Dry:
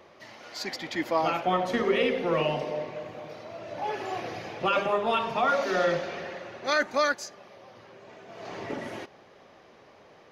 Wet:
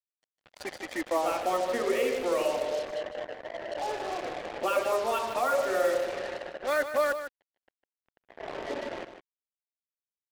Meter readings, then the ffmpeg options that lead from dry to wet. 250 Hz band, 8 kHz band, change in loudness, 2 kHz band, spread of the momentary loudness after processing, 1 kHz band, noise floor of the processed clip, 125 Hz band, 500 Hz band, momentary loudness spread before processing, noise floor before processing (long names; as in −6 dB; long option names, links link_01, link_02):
−5.0 dB, +1.5 dB, −2.0 dB, −4.0 dB, 12 LU, −3.0 dB, below −85 dBFS, below −10 dB, 0.0 dB, 16 LU, −55 dBFS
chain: -filter_complex "[0:a]lowpass=2800,afftdn=noise_reduction=20:noise_floor=-42,highpass=frequency=270:width=0.5412,highpass=frequency=270:width=1.3066,equalizer=frequency=570:width=3.7:gain=5.5,asplit=2[link_01][link_02];[link_02]acompressor=threshold=-36dB:ratio=6,volume=2dB[link_03];[link_01][link_03]amix=inputs=2:normalize=0,acrusher=bits=4:mix=0:aa=0.5,asplit=2[link_04][link_05];[link_05]aecho=0:1:153:0.316[link_06];[link_04][link_06]amix=inputs=2:normalize=0,volume=-6dB"